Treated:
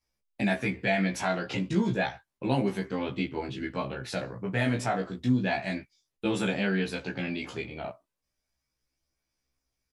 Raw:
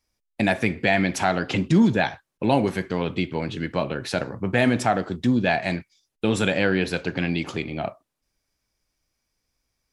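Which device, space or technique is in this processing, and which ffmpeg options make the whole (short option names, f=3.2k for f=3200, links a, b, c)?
double-tracked vocal: -filter_complex "[0:a]asplit=2[a][b];[b]adelay=15,volume=-2.5dB[c];[a][c]amix=inputs=2:normalize=0,flanger=delay=15:depth=2.1:speed=0.32,volume=-5.5dB"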